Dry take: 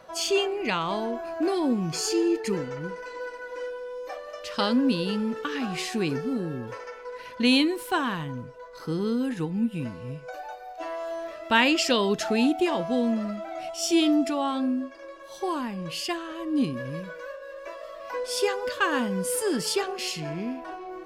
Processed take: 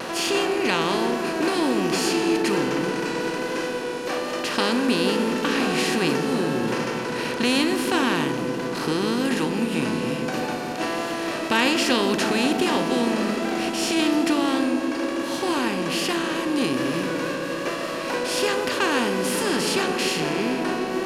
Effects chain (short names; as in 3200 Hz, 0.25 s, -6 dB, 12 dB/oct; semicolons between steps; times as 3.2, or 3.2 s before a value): per-bin compression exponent 0.4; vibrato 1.2 Hz 28 cents; dark delay 0.152 s, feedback 83%, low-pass 510 Hz, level -6.5 dB; gain -4 dB